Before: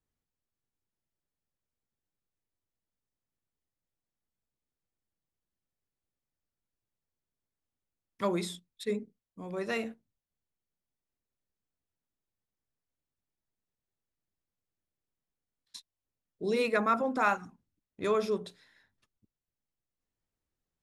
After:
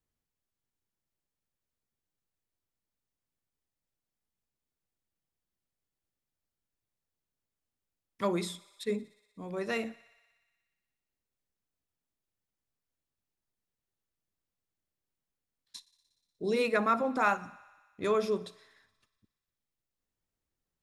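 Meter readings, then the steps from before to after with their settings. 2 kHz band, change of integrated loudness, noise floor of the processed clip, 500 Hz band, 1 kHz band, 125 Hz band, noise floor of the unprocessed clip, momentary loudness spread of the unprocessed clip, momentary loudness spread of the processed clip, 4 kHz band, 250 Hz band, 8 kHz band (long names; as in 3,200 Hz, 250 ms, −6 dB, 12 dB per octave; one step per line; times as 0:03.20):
0.0 dB, 0.0 dB, below −85 dBFS, 0.0 dB, 0.0 dB, 0.0 dB, below −85 dBFS, 22 LU, 22 LU, 0.0 dB, 0.0 dB, 0.0 dB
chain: feedback echo with a high-pass in the loop 60 ms, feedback 79%, high-pass 380 Hz, level −22 dB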